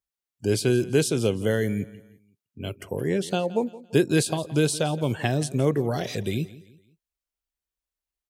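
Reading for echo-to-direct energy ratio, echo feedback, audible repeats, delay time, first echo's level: −18.0 dB, 38%, 2, 170 ms, −18.5 dB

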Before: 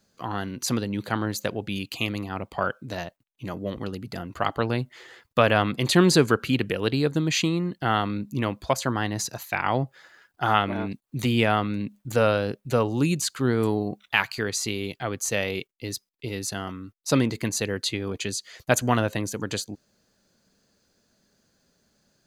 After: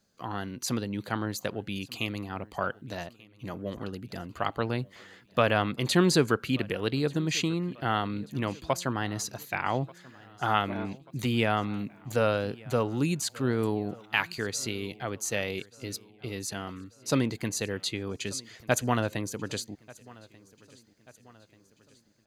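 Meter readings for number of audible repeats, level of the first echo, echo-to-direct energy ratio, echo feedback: 3, −23.0 dB, −21.5 dB, 53%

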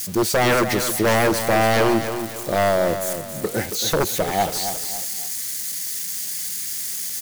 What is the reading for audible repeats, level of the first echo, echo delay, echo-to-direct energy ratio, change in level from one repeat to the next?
3, −9.0 dB, 275 ms, −8.5 dB, −8.5 dB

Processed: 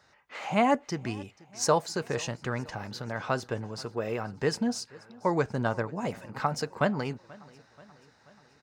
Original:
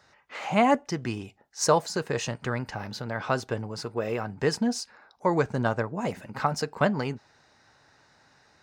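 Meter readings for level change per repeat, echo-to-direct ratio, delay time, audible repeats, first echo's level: −4.5 dB, −21.5 dB, 483 ms, 3, −23.0 dB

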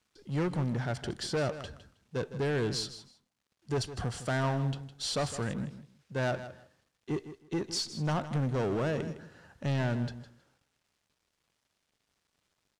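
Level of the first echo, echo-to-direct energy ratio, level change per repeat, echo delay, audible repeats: −13.0 dB, −13.0 dB, −14.5 dB, 159 ms, 2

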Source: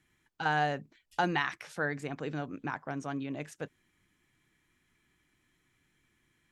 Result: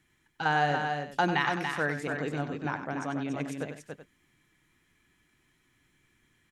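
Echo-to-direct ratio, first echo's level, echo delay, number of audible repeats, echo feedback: −3.5 dB, −9.5 dB, 95 ms, 3, repeats not evenly spaced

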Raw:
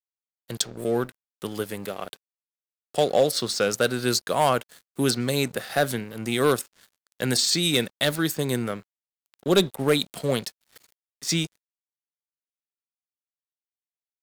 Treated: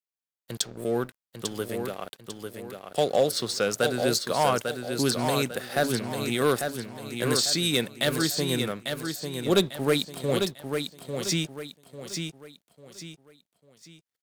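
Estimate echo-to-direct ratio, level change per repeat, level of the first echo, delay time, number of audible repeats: −5.5 dB, −9.0 dB, −6.0 dB, 847 ms, 4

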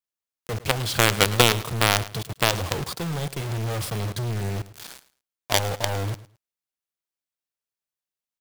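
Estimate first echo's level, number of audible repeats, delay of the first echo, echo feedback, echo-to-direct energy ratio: −17.0 dB, 2, 108 ms, 20%, −17.0 dB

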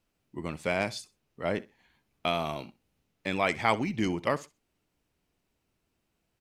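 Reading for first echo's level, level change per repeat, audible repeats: −20.0 dB, −13.0 dB, 2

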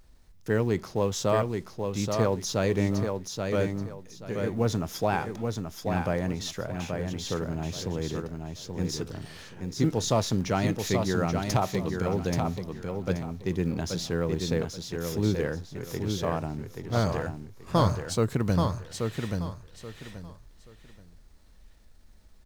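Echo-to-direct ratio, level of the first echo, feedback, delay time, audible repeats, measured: −4.5 dB, −5.0 dB, 25%, 830 ms, 3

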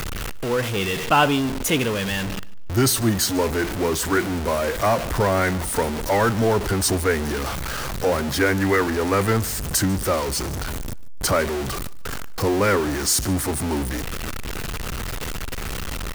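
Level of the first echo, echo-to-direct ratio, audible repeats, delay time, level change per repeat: −22.0 dB, −21.5 dB, 2, 146 ms, −11.5 dB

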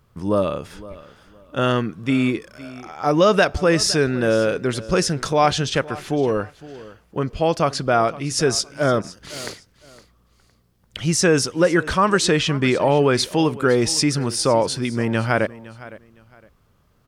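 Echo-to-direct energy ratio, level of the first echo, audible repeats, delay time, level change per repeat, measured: −18.0 dB, −18.5 dB, 2, 511 ms, −12.0 dB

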